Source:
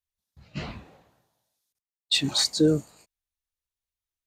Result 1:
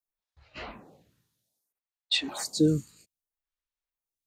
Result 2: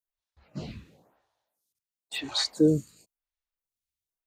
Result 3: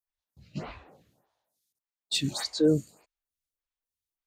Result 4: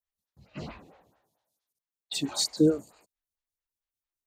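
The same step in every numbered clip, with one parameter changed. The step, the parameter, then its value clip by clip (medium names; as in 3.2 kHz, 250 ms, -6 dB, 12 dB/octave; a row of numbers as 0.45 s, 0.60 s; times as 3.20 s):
lamp-driven phase shifter, rate: 0.62 Hz, 0.97 Hz, 1.7 Hz, 4.5 Hz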